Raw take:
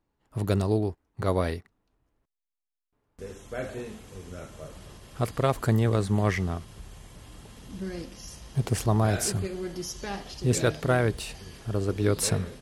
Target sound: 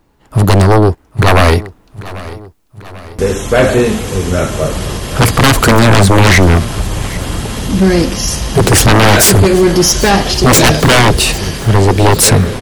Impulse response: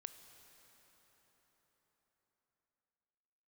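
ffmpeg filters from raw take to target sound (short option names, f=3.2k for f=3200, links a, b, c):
-filter_complex "[0:a]dynaudnorm=f=160:g=17:m=5dB,aeval=exprs='0.501*sin(PI/2*6.31*val(0)/0.501)':c=same,asplit=2[a][b];[b]aecho=0:1:792|1584|2376|3168|3960:0.119|0.0642|0.0347|0.0187|0.0101[c];[a][c]amix=inputs=2:normalize=0,volume=3dB"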